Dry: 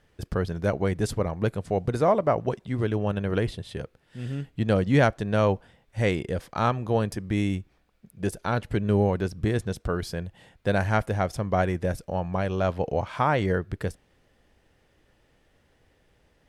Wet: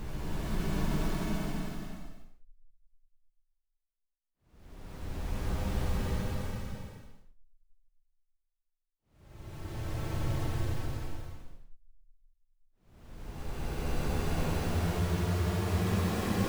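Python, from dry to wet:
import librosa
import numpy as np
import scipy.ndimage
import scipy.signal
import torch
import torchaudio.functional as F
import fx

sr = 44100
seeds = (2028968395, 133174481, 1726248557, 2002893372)

y = fx.gate_flip(x, sr, shuts_db=-17.0, range_db=-33)
y = fx.schmitt(y, sr, flips_db=-43.5)
y = fx.paulstretch(y, sr, seeds[0], factor=26.0, window_s=0.1, from_s=0.78)
y = F.gain(torch.from_numpy(y), 8.5).numpy()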